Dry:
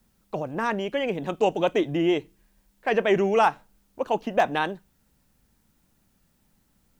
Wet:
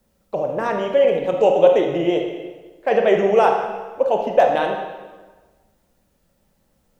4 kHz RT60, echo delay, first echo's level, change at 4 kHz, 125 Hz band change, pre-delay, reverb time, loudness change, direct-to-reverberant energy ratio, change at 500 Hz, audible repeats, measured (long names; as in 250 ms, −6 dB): 1.1 s, no echo audible, no echo audible, +1.5 dB, +1.0 dB, 23 ms, 1.3 s, +6.5 dB, 2.0 dB, +9.0 dB, no echo audible